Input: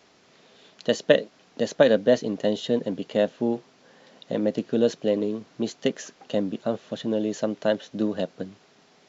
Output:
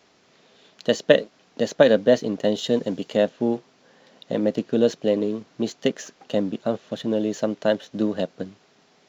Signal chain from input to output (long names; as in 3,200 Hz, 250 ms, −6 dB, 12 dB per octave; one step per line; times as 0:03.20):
0:02.58–0:03.16: high-shelf EQ 6,400 Hz +11.5 dB
in parallel at −6.5 dB: dead-zone distortion −44.5 dBFS
on the sum: level −1 dB